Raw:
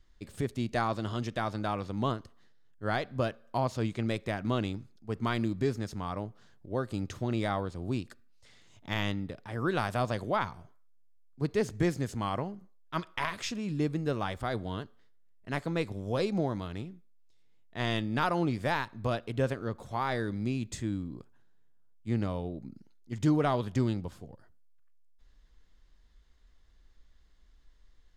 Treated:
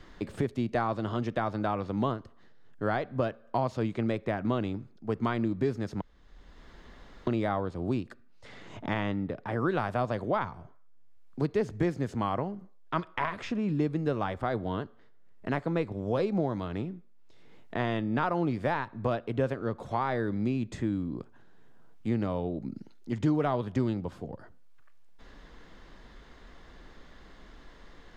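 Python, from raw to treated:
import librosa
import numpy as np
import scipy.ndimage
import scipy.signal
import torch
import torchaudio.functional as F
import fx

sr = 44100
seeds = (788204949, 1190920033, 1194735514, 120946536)

y = fx.edit(x, sr, fx.room_tone_fill(start_s=6.01, length_s=1.26), tone=tone)
y = fx.lowpass(y, sr, hz=1300.0, slope=6)
y = fx.low_shelf(y, sr, hz=180.0, db=-6.0)
y = fx.band_squash(y, sr, depth_pct=70)
y = F.gain(torch.from_numpy(y), 4.0).numpy()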